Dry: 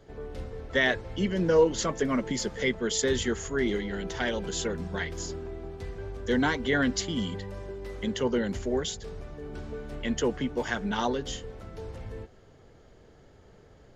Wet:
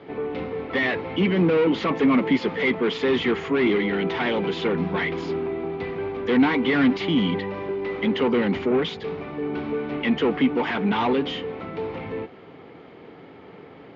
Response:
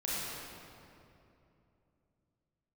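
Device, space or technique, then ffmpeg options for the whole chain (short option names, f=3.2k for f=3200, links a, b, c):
overdrive pedal into a guitar cabinet: -filter_complex "[0:a]asplit=2[a][b];[b]highpass=f=720:p=1,volume=27dB,asoftclip=type=tanh:threshold=-10dB[c];[a][c]amix=inputs=2:normalize=0,lowpass=f=1.5k:p=1,volume=-6dB,highpass=93,equalizer=f=170:t=q:w=4:g=6,equalizer=f=280:t=q:w=4:g=7,equalizer=f=600:t=q:w=4:g=-7,equalizer=f=1.6k:t=q:w=4:g=-7,equalizer=f=2.3k:t=q:w=4:g=6,lowpass=f=3.8k:w=0.5412,lowpass=f=3.8k:w=1.3066,volume=-2dB"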